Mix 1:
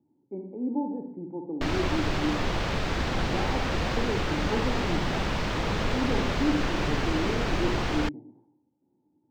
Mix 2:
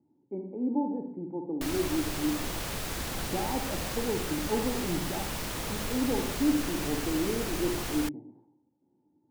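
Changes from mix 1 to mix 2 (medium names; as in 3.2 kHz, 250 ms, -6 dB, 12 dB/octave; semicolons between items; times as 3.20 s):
background -8.5 dB; master: remove distance through air 180 m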